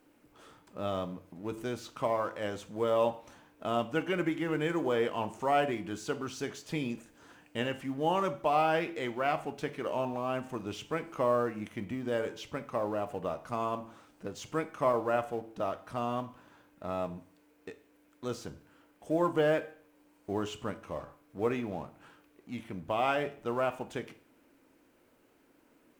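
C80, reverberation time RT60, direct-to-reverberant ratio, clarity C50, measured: 19.0 dB, 0.50 s, 9.5 dB, 15.5 dB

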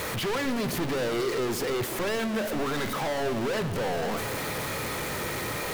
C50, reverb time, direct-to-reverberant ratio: 12.0 dB, 1.7 s, 10.0 dB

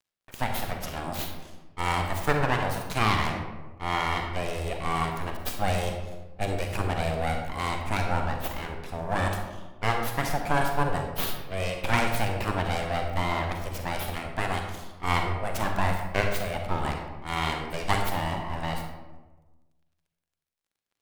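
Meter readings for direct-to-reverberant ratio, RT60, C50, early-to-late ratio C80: 3.5 dB, 1.2 s, 4.5 dB, 6.5 dB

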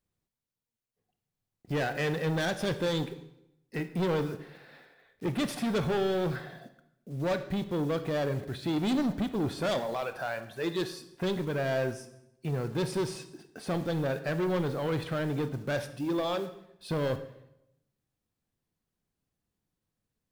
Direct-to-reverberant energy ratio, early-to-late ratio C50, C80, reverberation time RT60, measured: 10.0 dB, 12.5 dB, 14.5 dB, 0.85 s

